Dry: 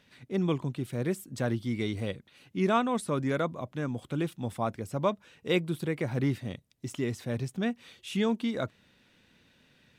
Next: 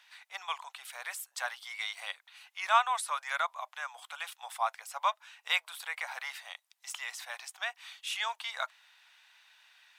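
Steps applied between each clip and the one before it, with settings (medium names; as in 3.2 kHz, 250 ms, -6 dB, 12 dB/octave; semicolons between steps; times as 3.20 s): steep high-pass 770 Hz 48 dB/octave; trim +4.5 dB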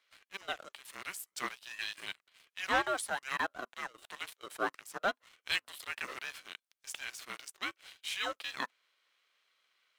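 ring modulator 390 Hz; waveshaping leveller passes 2; trim -6.5 dB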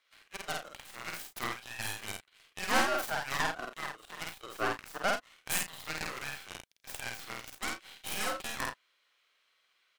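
tracing distortion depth 0.49 ms; loudspeakers at several distances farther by 17 m -2 dB, 29 m -11 dB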